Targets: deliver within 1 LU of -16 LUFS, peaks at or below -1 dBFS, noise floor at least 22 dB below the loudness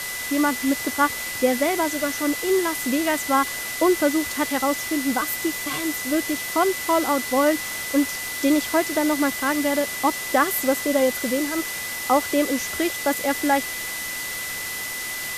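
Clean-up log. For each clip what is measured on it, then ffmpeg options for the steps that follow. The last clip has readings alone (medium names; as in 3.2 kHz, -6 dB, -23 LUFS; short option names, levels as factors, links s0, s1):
steady tone 2 kHz; tone level -31 dBFS; noise floor -30 dBFS; noise floor target -45 dBFS; loudness -22.5 LUFS; peak level -6.0 dBFS; loudness target -16.0 LUFS
-> -af "bandreject=f=2000:w=30"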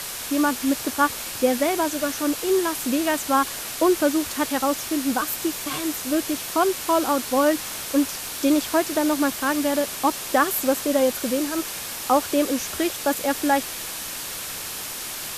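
steady tone not found; noise floor -33 dBFS; noise floor target -45 dBFS
-> -af "afftdn=nr=12:nf=-33"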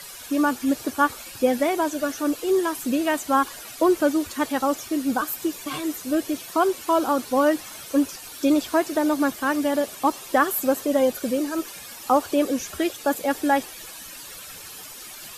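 noise floor -40 dBFS; noise floor target -46 dBFS
-> -af "afftdn=nr=6:nf=-40"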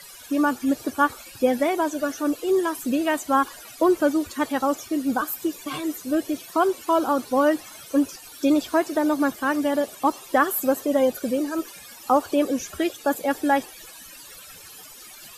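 noise floor -44 dBFS; noise floor target -46 dBFS
-> -af "afftdn=nr=6:nf=-44"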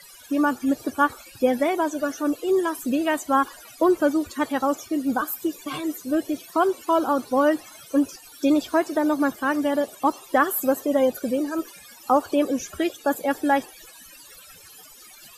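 noise floor -47 dBFS; loudness -23.5 LUFS; peak level -6.5 dBFS; loudness target -16.0 LUFS
-> -af "volume=2.37,alimiter=limit=0.891:level=0:latency=1"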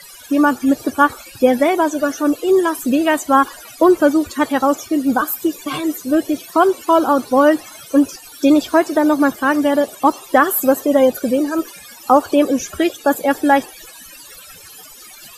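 loudness -16.5 LUFS; peak level -1.0 dBFS; noise floor -40 dBFS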